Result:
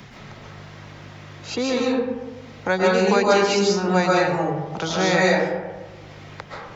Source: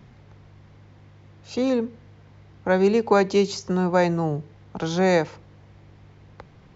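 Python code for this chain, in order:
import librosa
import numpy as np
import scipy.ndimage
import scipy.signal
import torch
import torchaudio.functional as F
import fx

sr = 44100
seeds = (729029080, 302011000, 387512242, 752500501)

y = fx.dereverb_blind(x, sr, rt60_s=0.62)
y = fx.tilt_shelf(y, sr, db=-5.5, hz=1100.0)
y = fx.rev_freeverb(y, sr, rt60_s=1.1, hf_ratio=0.45, predelay_ms=95, drr_db=-5.5)
y = fx.band_squash(y, sr, depth_pct=40)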